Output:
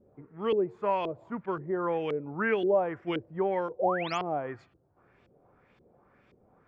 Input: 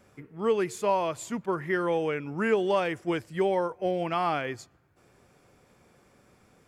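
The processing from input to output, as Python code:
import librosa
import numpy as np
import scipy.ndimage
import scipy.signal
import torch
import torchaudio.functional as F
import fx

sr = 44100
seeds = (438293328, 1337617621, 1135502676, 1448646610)

y = fx.spec_paint(x, sr, seeds[0], shape='rise', start_s=3.79, length_s=0.39, low_hz=470.0, high_hz=7500.0, level_db=-31.0)
y = fx.filter_lfo_lowpass(y, sr, shape='saw_up', hz=1.9, low_hz=370.0, high_hz=3500.0, q=2.1)
y = y * librosa.db_to_amplitude(-4.0)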